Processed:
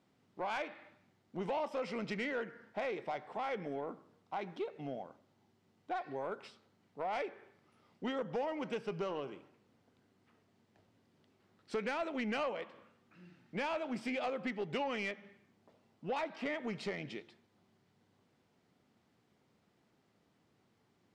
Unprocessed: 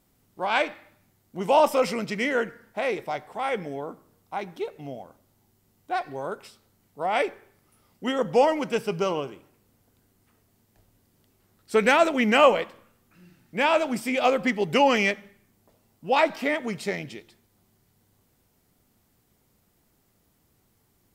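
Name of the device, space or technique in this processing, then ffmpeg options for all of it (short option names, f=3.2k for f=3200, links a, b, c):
AM radio: -af "highpass=140,lowpass=4k,acompressor=threshold=-31dB:ratio=4,asoftclip=type=tanh:threshold=-26dB,volume=-3dB"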